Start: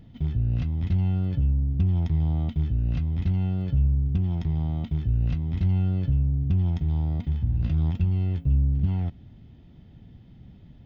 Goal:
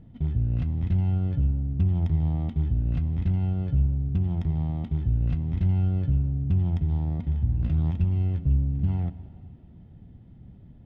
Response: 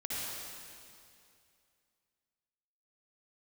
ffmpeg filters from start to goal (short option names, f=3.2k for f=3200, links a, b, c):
-filter_complex "[0:a]aemphasis=mode=production:type=75fm,adynamicsmooth=sensitivity=2.5:basefreq=1.4k,asplit=2[a][b];[1:a]atrim=start_sample=2205[c];[b][c]afir=irnorm=-1:irlink=0,volume=-16.5dB[d];[a][d]amix=inputs=2:normalize=0"